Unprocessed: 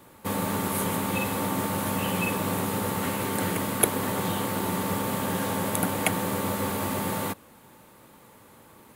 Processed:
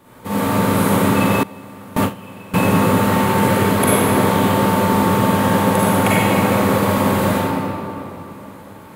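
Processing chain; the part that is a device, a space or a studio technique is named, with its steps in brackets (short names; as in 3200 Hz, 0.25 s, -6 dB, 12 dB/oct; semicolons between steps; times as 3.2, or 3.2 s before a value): swimming-pool hall (reverb RT60 2.9 s, pre-delay 38 ms, DRR -10.5 dB; high shelf 4200 Hz -6 dB); 1.43–2.54 gate with hold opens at -5 dBFS; gain +2 dB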